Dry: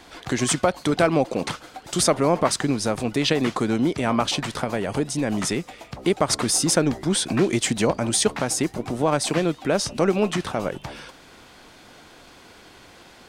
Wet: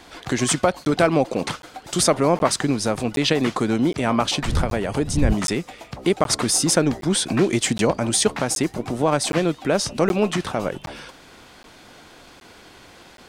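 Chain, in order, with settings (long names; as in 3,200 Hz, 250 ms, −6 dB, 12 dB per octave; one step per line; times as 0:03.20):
0:04.42–0:05.33: wind on the microphone 95 Hz −20 dBFS
regular buffer underruns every 0.77 s, samples 512, zero, from 0:00.85
level +1.5 dB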